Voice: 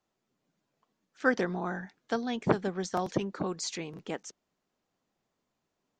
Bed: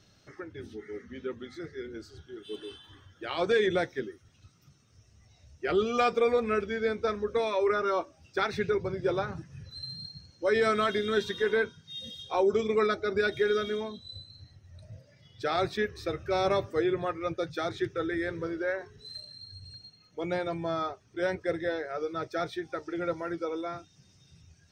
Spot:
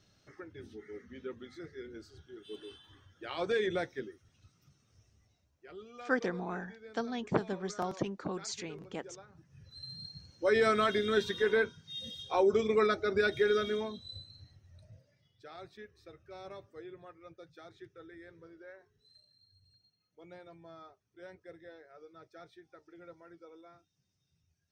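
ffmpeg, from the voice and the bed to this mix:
ffmpeg -i stem1.wav -i stem2.wav -filter_complex "[0:a]adelay=4850,volume=-4.5dB[link_01];[1:a]volume=15dB,afade=type=out:start_time=5.02:duration=0.47:silence=0.149624,afade=type=in:start_time=9.32:duration=0.98:silence=0.0891251,afade=type=out:start_time=14.02:duration=1.41:silence=0.112202[link_02];[link_01][link_02]amix=inputs=2:normalize=0" out.wav

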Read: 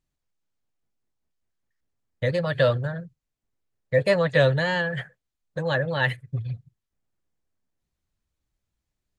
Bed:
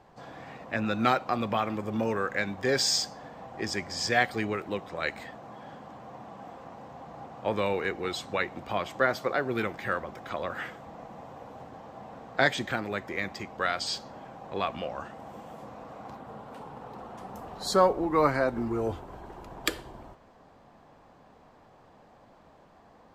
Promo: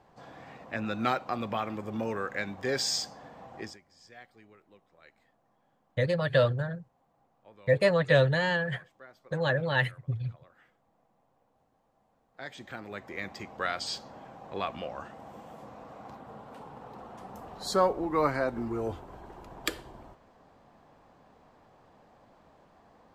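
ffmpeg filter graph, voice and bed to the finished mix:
ffmpeg -i stem1.wav -i stem2.wav -filter_complex "[0:a]adelay=3750,volume=-3dB[link_01];[1:a]volume=19.5dB,afade=type=out:start_time=3.56:duration=0.22:silence=0.0749894,afade=type=in:start_time=12.32:duration=1.15:silence=0.0668344[link_02];[link_01][link_02]amix=inputs=2:normalize=0" out.wav

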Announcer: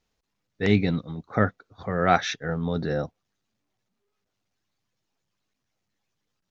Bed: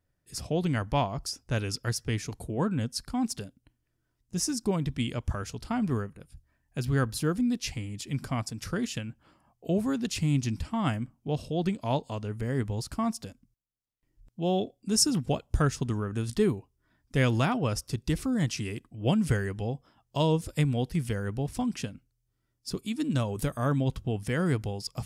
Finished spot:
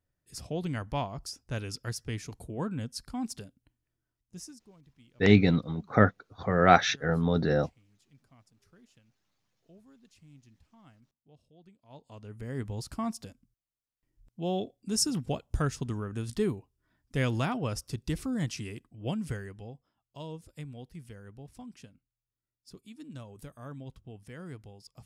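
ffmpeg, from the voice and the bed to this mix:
ffmpeg -i stem1.wav -i stem2.wav -filter_complex "[0:a]adelay=4600,volume=1dB[link_01];[1:a]volume=20dB,afade=type=out:start_time=3.83:duration=0.83:silence=0.0630957,afade=type=in:start_time=11.88:duration=0.91:silence=0.0530884,afade=type=out:start_time=18.41:duration=1.53:silence=0.237137[link_02];[link_01][link_02]amix=inputs=2:normalize=0" out.wav

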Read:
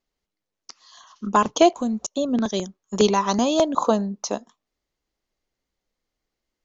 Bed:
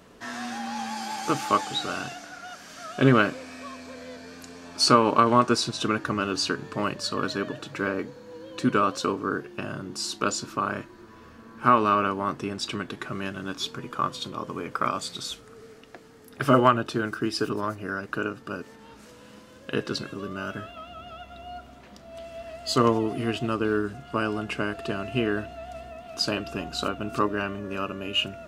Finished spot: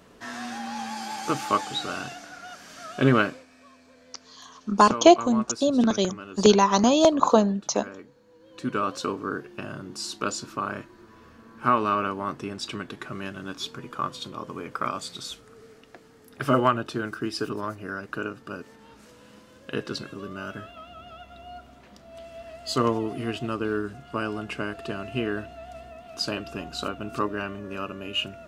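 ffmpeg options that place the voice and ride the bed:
ffmpeg -i stem1.wav -i stem2.wav -filter_complex "[0:a]adelay=3450,volume=1.5dB[link_01];[1:a]volume=10dB,afade=type=out:start_time=3.21:duration=0.25:silence=0.237137,afade=type=in:start_time=8.39:duration=0.55:silence=0.281838[link_02];[link_01][link_02]amix=inputs=2:normalize=0" out.wav

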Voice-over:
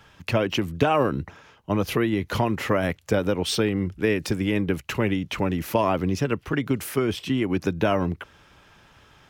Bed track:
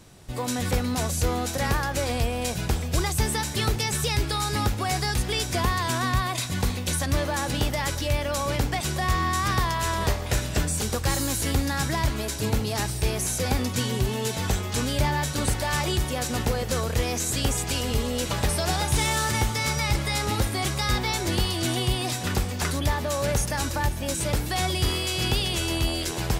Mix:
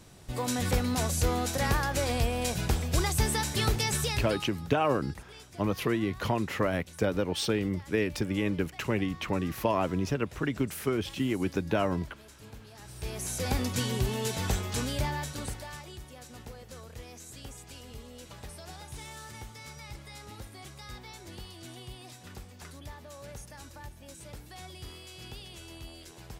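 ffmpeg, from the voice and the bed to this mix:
ffmpeg -i stem1.wav -i stem2.wav -filter_complex "[0:a]adelay=3900,volume=-5.5dB[link_01];[1:a]volume=17dB,afade=type=out:start_time=3.94:duration=0.56:silence=0.0891251,afade=type=in:start_time=12.81:duration=0.78:silence=0.105925,afade=type=out:start_time=14.59:duration=1.24:silence=0.158489[link_02];[link_01][link_02]amix=inputs=2:normalize=0" out.wav

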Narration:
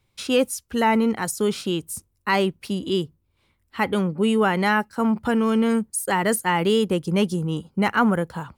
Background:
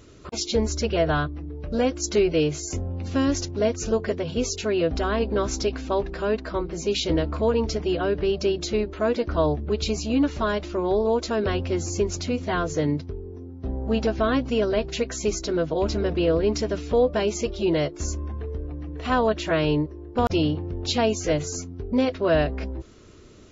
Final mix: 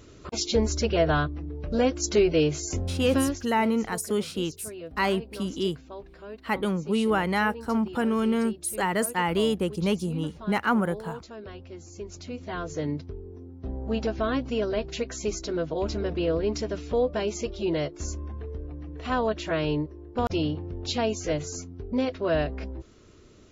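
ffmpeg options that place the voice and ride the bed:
ffmpeg -i stem1.wav -i stem2.wav -filter_complex "[0:a]adelay=2700,volume=-4.5dB[link_01];[1:a]volume=12dB,afade=type=out:start_time=3.16:duration=0.26:silence=0.149624,afade=type=in:start_time=11.91:duration=1.22:silence=0.237137[link_02];[link_01][link_02]amix=inputs=2:normalize=0" out.wav

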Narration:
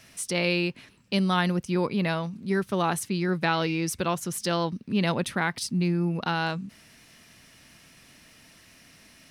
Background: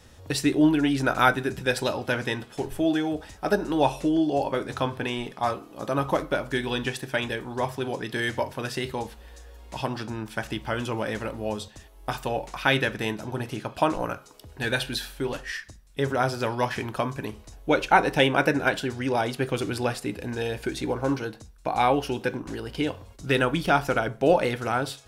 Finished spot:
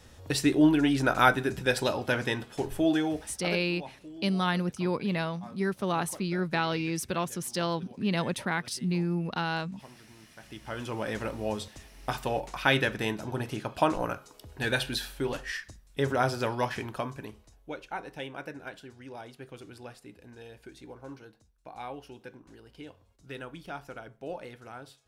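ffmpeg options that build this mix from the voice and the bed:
ffmpeg -i stem1.wav -i stem2.wav -filter_complex "[0:a]adelay=3100,volume=-3.5dB[link_01];[1:a]volume=18.5dB,afade=type=out:start_time=3.04:duration=0.6:silence=0.0944061,afade=type=in:start_time=10.37:duration=0.88:silence=0.1,afade=type=out:start_time=16.33:duration=1.44:silence=0.149624[link_02];[link_01][link_02]amix=inputs=2:normalize=0" out.wav

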